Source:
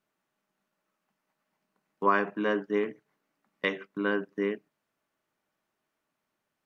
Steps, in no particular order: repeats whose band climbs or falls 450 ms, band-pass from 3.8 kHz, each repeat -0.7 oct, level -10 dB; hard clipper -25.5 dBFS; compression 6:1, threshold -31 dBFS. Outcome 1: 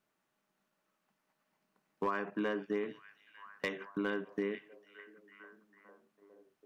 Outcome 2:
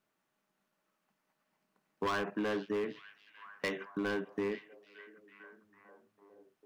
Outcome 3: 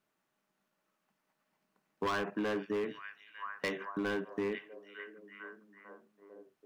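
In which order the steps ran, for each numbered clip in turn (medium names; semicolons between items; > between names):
compression > repeats whose band climbs or falls > hard clipper; hard clipper > compression > repeats whose band climbs or falls; repeats whose band climbs or falls > hard clipper > compression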